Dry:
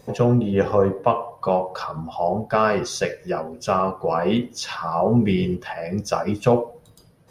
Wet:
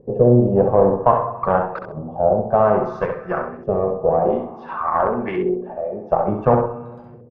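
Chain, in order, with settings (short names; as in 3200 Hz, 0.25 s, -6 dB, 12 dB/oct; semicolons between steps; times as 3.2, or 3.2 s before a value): 4.27–6.1 three-band isolator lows -21 dB, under 280 Hz, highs -15 dB, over 4100 Hz; on a send at -13 dB: reverb RT60 1.9 s, pre-delay 5 ms; on the sum: added harmonics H 6 -20 dB, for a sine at -4 dBFS; LFO low-pass saw up 0.56 Hz 400–1800 Hz; feedback echo 66 ms, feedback 21%, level -6 dB; gain -1 dB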